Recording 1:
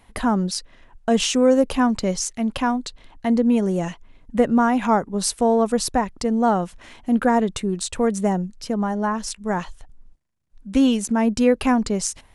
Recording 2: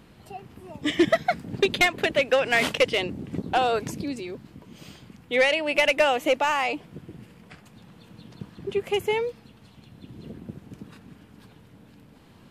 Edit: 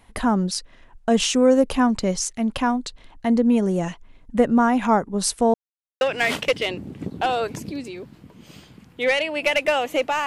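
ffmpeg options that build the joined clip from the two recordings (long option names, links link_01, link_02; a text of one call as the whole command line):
ffmpeg -i cue0.wav -i cue1.wav -filter_complex "[0:a]apad=whole_dur=10.26,atrim=end=10.26,asplit=2[link_01][link_02];[link_01]atrim=end=5.54,asetpts=PTS-STARTPTS,afade=type=out:start_time=5.536:duration=0.004:curve=hsin[link_03];[link_02]atrim=start=5.54:end=6.01,asetpts=PTS-STARTPTS,volume=0[link_04];[1:a]atrim=start=2.33:end=6.58,asetpts=PTS-STARTPTS,afade=type=in:duration=0.004:curve=hsin[link_05];[link_03][link_04][link_05]concat=n=3:v=0:a=1" out.wav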